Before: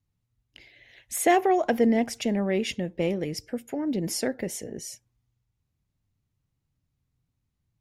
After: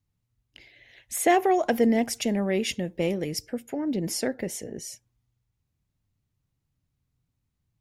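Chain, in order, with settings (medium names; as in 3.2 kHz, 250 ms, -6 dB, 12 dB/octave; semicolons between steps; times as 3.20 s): 1.40–3.47 s: treble shelf 6.3 kHz +9 dB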